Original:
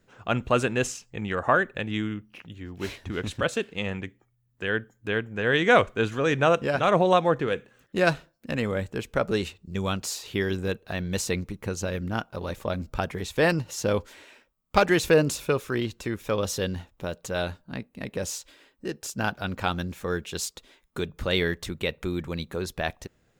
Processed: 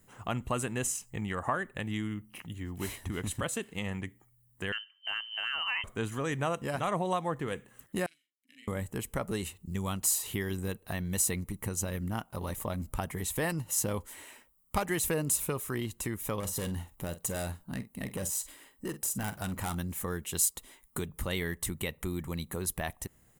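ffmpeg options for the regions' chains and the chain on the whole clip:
-filter_complex "[0:a]asettb=1/sr,asplit=3[a][b][c];[a]atrim=end=4.724[d];[b]atrim=start=4.72:end=5.84,asetpts=PTS-STARTPTS,afade=t=in:d=0.004:c=qsin,afade=t=out:st=1.116:d=0.004:c=qsin,lowpass=f=2.7k:t=q:w=0.5098,lowpass=f=2.7k:t=q:w=0.6013,lowpass=f=2.7k:t=q:w=0.9,lowpass=f=2.7k:t=q:w=2.563,afreqshift=-3200,lowshelf=f=390:g=-11,acompressor=threshold=-23dB:ratio=2:attack=3.2:release=140:knee=1:detection=peak[e];[c]atrim=start=5.836[f];[d][e]acrossfade=d=0.004:c1=hsin:c2=qsin[g];[g][f]acrossfade=d=0.004:c1=qsin:c2=hsin,asettb=1/sr,asplit=3[h][i][j];[h]atrim=end=8.064[k];[i]atrim=start=8.06:end=8.68,asetpts=PTS-STARTPTS,afade=t=in:d=0.004:c=qsin,afade=t=out:st=0.616:d=0.004:c=qsin,asplit=3[l][m][n];[l]bandpass=f=270:t=q:w=8,volume=0dB[o];[m]bandpass=f=2.29k:t=q:w=8,volume=-6dB[p];[n]bandpass=f=3.01k:t=q:w=8,volume=-9dB[q];[o][p][q]amix=inputs=3:normalize=0,aderivative,asplit=2[r][s];[s]adelay=42,volume=-4dB[t];[r][t]amix=inputs=2:normalize=0,atrim=end_sample=27342[u];[j]atrim=start=8.676[v];[k][u]acrossfade=d=0.004:c1=hsin:c2=qsin[w];[w][v]acrossfade=d=0.004:c1=qsin:c2=hsin,asettb=1/sr,asplit=3[x][y][z];[x]atrim=end=16.404[aa];[y]atrim=start=16.4:end=19.75,asetpts=PTS-STARTPTS,afade=t=in:d=0.004:c=qsin,afade=t=out:st=3.346:d=0.004:c=qsin,deesser=0.75,asoftclip=type=hard:threshold=-26dB,asplit=2[ab][ac];[ac]adelay=47,volume=-13.5dB[ad];[ab][ad]amix=inputs=2:normalize=0,atrim=end_sample=147735[ae];[z]atrim=start=19.746[af];[aa][ae]acrossfade=d=0.004:c1=hsin:c2=qsin[ag];[ag][af]acrossfade=d=0.004:c1=qsin:c2=hsin,aecho=1:1:1:0.36,acompressor=threshold=-35dB:ratio=2,highshelf=f=7k:t=q:w=1.5:g=13.5"

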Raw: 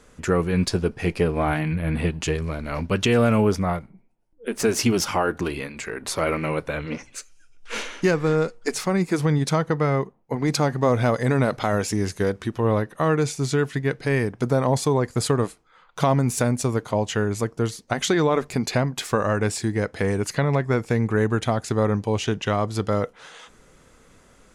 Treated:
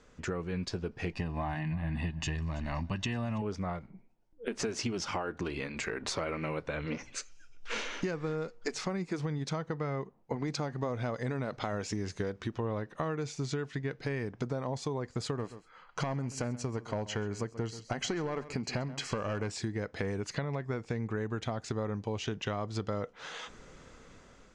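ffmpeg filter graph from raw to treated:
-filter_complex "[0:a]asettb=1/sr,asplit=3[a][b][c];[a]atrim=end=1.134[d];[b]atrim=start=1.13:end=3.42,asetpts=PTS-STARTPTS,afade=t=in:d=0.004:c=qsin,afade=t=out:st=2.286:d=0.004:c=qsin,aecho=1:1:1.1:0.76,atrim=end_sample=100989,aecho=1:1:329:0.1,atrim=end_sample=100989[e];[c]atrim=start=3.416[f];[d][e]acrossfade=d=0.004:c1=hsin:c2=qsin[g];[g][f]acrossfade=d=0.004:c1=qsin:c2=hsin,asettb=1/sr,asplit=3[h][i][j];[h]atrim=end=15.374[k];[i]atrim=start=15.37:end=19.51,asetpts=PTS-STARTPTS,afade=t=in:d=0.004:c=qsin,afade=t=out:st=4.136:d=0.004:c=qsin,aeval=exprs='clip(val(0),-1,0.126)':c=same,asuperstop=centerf=3600:order=8:qfactor=8,aecho=1:1:131:0.126,atrim=end_sample=182574[l];[j]atrim=start=19.506[m];[k][l]acrossfade=d=0.004:c1=hsin:c2=qsin[n];[n][m]acrossfade=d=0.004:c1=qsin:c2=hsin,dynaudnorm=f=520:g=5:m=11.5dB,lowpass=f=6.9k:w=0.5412,lowpass=f=6.9k:w=1.3066,acompressor=threshold=-25dB:ratio=6,volume=-7dB"

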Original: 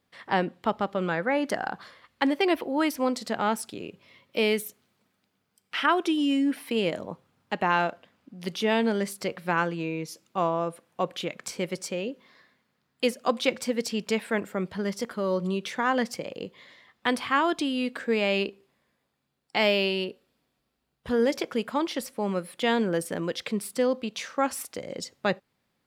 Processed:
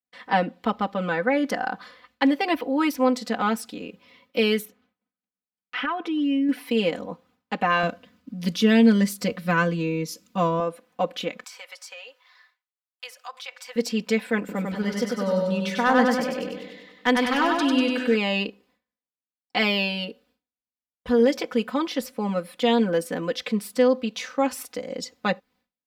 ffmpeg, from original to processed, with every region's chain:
-filter_complex "[0:a]asettb=1/sr,asplit=3[a][b][c];[a]atrim=end=4.654[d];[b]atrim=start=4.65:end=6.49,asetpts=PTS-STARTPTS,afade=t=in:d=0.004:c=qsin,afade=t=out:st=1.836:d=0.004:c=qsin,bass=f=250:g=1,treble=f=4k:g=-15,acompressor=threshold=-25dB:ratio=6:attack=3.2:release=140:knee=1:detection=peak[e];[c]atrim=start=6.486[f];[d][e]acrossfade=d=0.004:c1=hsin:c2=qsin[g];[g][f]acrossfade=d=0.004:c1=qsin:c2=hsin,asettb=1/sr,asplit=3[h][i][j];[h]atrim=end=7.834[k];[i]atrim=start=7.83:end=10.6,asetpts=PTS-STARTPTS,afade=t=in:d=0.004:c=qsin,afade=t=out:st=2.766:d=0.004:c=qsin,bass=f=250:g=10,treble=f=4k:g=6,bandreject=f=810:w=5.9[l];[j]atrim=start=10.596[m];[k][l]acrossfade=d=0.004:c1=hsin:c2=qsin[n];[n][m]acrossfade=d=0.004:c1=qsin:c2=hsin,asettb=1/sr,asplit=3[o][p][q];[o]atrim=end=11.444[r];[p]atrim=start=11.44:end=13.76,asetpts=PTS-STARTPTS,afade=t=in:d=0.004:c=qsin,afade=t=out:st=2.316:d=0.004:c=qsin,highpass=f=820:w=0.5412,highpass=f=820:w=1.3066,acompressor=threshold=-40dB:ratio=3:attack=3.2:release=140:knee=1:detection=peak[s];[q]atrim=start=13.756[t];[r][s]acrossfade=d=0.004:c1=hsin:c2=qsin[u];[u][t]acrossfade=d=0.004:c1=qsin:c2=hsin,asettb=1/sr,asplit=3[v][w][x];[v]atrim=end=14.394[y];[w]atrim=start=14.39:end=18.16,asetpts=PTS-STARTPTS,afade=t=in:d=0.004:c=qsin,afade=t=out:st=3.766:d=0.004:c=qsin,bandreject=f=1.1k:w=8,aeval=exprs='clip(val(0),-1,0.158)':c=same,aecho=1:1:97|194|291|388|485|582|679|776:0.708|0.396|0.222|0.124|0.0696|0.039|0.0218|0.0122,atrim=end_sample=166257[z];[x]atrim=start=18.156[aa];[y][z]acrossfade=d=0.004:c1=hsin:c2=qsin[ab];[ab][aa]acrossfade=d=0.004:c1=qsin:c2=hsin,agate=range=-33dB:threshold=-58dB:ratio=3:detection=peak,equalizer=f=9.4k:t=o:w=0.67:g=-6,aecho=1:1:4:0.95"

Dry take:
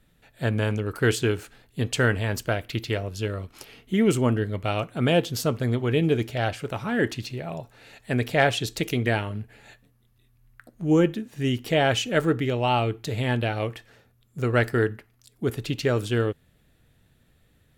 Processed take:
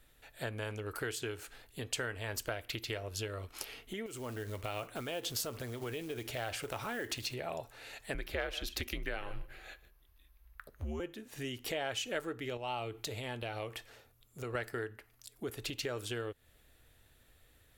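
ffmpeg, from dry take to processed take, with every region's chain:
-filter_complex "[0:a]asettb=1/sr,asplit=3[a][b][c];[a]atrim=end=4.064[d];[b]atrim=start=4.06:end=7.34,asetpts=PTS-STARTPTS,afade=t=in:d=0.004:c=qsin,afade=t=out:st=3.276:d=0.004:c=qsin,acrusher=bits=6:mode=log:mix=0:aa=0.000001,acompressor=threshold=-28dB:ratio=5:attack=3.2:release=140:knee=1:detection=peak[e];[c]atrim=start=7.336[f];[d][e]acrossfade=d=0.004:c1=hsin:c2=qsin[g];[g][f]acrossfade=d=0.004:c1=qsin:c2=hsin,asettb=1/sr,asplit=3[h][i][j];[h]atrim=end=8.144[k];[i]atrim=start=8.14:end=11,asetpts=PTS-STARTPTS,afade=t=in:d=0.004:c=qsin,afade=t=out:st=2.856:d=0.004:c=qsin,equalizer=f=8.1k:t=o:w=0.71:g=-9.5,aecho=1:1:149:0.106,atrim=end_sample=126126,afreqshift=-85[l];[j]atrim=start=10.996[m];[k][l]acrossfade=d=0.004:c1=hsin:c2=qsin[n];[n][m]acrossfade=d=0.004:c1=qsin:c2=hsin,asettb=1/sr,asplit=3[o][p][q];[o]atrim=end=12.574[r];[p]atrim=start=12.57:end=14.55,asetpts=PTS-STARTPTS,afade=t=in:d=0.004:c=qsin,afade=t=out:st=1.976:d=0.004:c=qsin,acompressor=threshold=-37dB:ratio=2:attack=3.2:release=140:knee=1:detection=peak,equalizer=f=1.7k:t=o:w=0.42:g=-4[s];[q]atrim=start=14.546[t];[r][s]acrossfade=d=0.004:c1=hsin:c2=qsin[u];[u][t]acrossfade=d=0.004:c1=qsin:c2=hsin,highshelf=f=8k:g=5.5,acompressor=threshold=-31dB:ratio=12,equalizer=f=170:w=1.1:g=-14.5"

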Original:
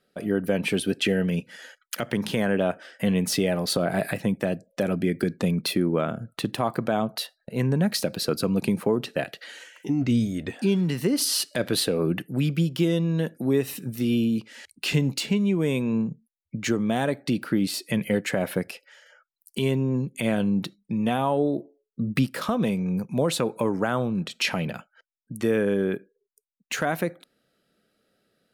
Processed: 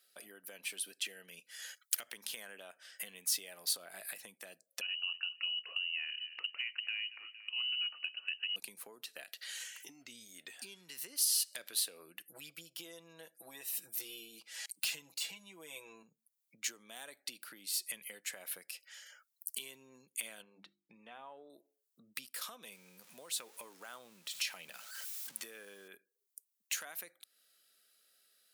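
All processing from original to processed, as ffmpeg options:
-filter_complex "[0:a]asettb=1/sr,asplit=3[a][b][c];[a]atrim=end=4.814[d];[b]atrim=start=4.81:end=8.56,asetpts=PTS-STARTPTS,afade=t=in:d=0.004:c=qsin,afade=t=out:st=3.746:d=0.004:c=qsin,asplit=2[e][f];[f]adelay=230,lowpass=f=2.1k:p=1,volume=-20dB,asplit=2[g][h];[h]adelay=230,lowpass=f=2.1k:p=1,volume=0.33,asplit=2[i][j];[j]adelay=230,lowpass=f=2.1k:p=1,volume=0.33[k];[e][g][i][k]amix=inputs=4:normalize=0,atrim=end_sample=165375,lowpass=f=2.6k:t=q:w=0.5098,lowpass=f=2.6k:t=q:w=0.6013,lowpass=f=2.6k:t=q:w=0.9,lowpass=f=2.6k:t=q:w=2.563,afreqshift=-3100[l];[c]atrim=start=8.556[m];[d][l]acrossfade=d=0.004:c1=hsin:c2=qsin[n];[n][m]acrossfade=d=0.004:c1=qsin:c2=hsin,asettb=1/sr,asplit=3[o][p][q];[o]atrim=end=12.274[r];[p]atrim=start=12.27:end=16.03,asetpts=PTS-STARTPTS,afade=t=in:d=0.004:c=qsin,afade=t=out:st=3.756:d=0.004:c=qsin,deesser=0.6,equalizer=f=730:t=o:w=1.3:g=8,aecho=1:1:6.1:1,atrim=end_sample=165816[s];[q]atrim=start=16.026[t];[r][s]acrossfade=d=0.004:c1=hsin:c2=qsin[u];[u][t]acrossfade=d=0.004:c1=qsin:c2=hsin,asettb=1/sr,asplit=3[v][w][x];[v]atrim=end=20.424[y];[w]atrim=start=20.42:end=21.5,asetpts=PTS-STARTPTS,afade=t=in:d=0.004:c=qsin,afade=t=out:st=1.076:d=0.004:c=qsin,lowpass=2k,bandreject=f=50:t=h:w=6,bandreject=f=100:t=h:w=6,bandreject=f=150:t=h:w=6,bandreject=f=200:t=h:w=6,bandreject=f=250:t=h:w=6,bandreject=f=300:t=h:w=6,bandreject=f=350:t=h:w=6[z];[x]atrim=start=21.496[aa];[y][z]acrossfade=d=0.004:c1=hsin:c2=qsin[ab];[ab][aa]acrossfade=d=0.004:c1=qsin:c2=hsin,asettb=1/sr,asplit=3[ac][ad][ae];[ac]atrim=end=22.724[af];[ad]atrim=start=22.72:end=25.88,asetpts=PTS-STARTPTS,afade=t=in:d=0.004:c=qsin,afade=t=out:st=3.156:d=0.004:c=qsin,aeval=exprs='val(0)+0.5*0.0106*sgn(val(0))':c=same,highshelf=f=7.5k:g=-4[ag];[ae]atrim=start=25.876[ah];[af][ag]acrossfade=d=0.004:c1=hsin:c2=qsin[ai];[ai][ah]acrossfade=d=0.004:c1=qsin:c2=hsin,acompressor=threshold=-41dB:ratio=3,highpass=f=260:p=1,aderivative,volume=8.5dB"

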